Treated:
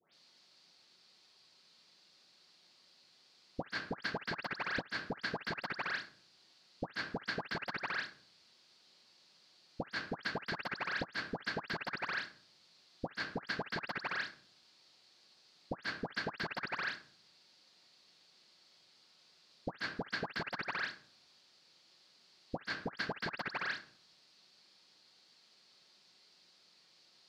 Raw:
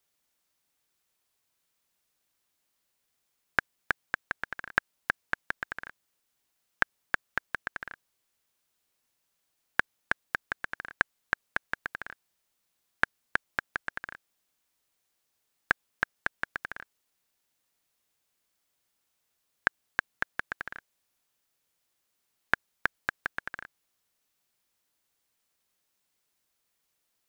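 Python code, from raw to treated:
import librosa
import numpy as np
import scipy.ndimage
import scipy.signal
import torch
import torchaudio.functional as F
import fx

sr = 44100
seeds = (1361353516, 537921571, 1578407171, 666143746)

y = scipy.signal.sosfilt(scipy.signal.butter(2, 140.0, 'highpass', fs=sr, output='sos'), x)
y = fx.low_shelf(y, sr, hz=420.0, db=10.0)
y = fx.room_shoebox(y, sr, seeds[0], volume_m3=500.0, walls='furnished', distance_m=1.0)
y = 10.0 ** (-18.5 / 20.0) * (np.abs((y / 10.0 ** (-18.5 / 20.0) + 3.0) % 4.0 - 2.0) - 1.0)
y = fx.lowpass_res(y, sr, hz=4500.0, q=4.9)
y = fx.low_shelf(y, sr, hz=200.0, db=-9.5)
y = fx.dispersion(y, sr, late='highs', ms=139.0, hz=2100.0)
y = fx.over_compress(y, sr, threshold_db=-43.0, ratio=-0.5)
y = F.gain(torch.from_numpy(y), 2.5).numpy()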